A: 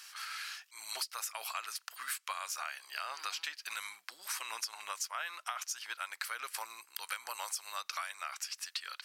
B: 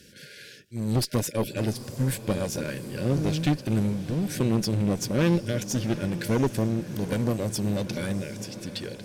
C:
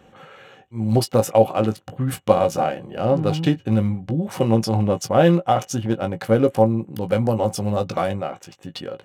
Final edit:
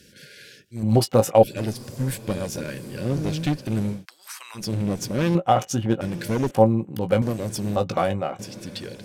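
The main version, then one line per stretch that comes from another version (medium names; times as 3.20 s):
B
0.83–1.43 s: from C
3.98–4.62 s: from A, crossfade 0.16 s
5.35–6.01 s: from C
6.51–7.22 s: from C
7.76–8.39 s: from C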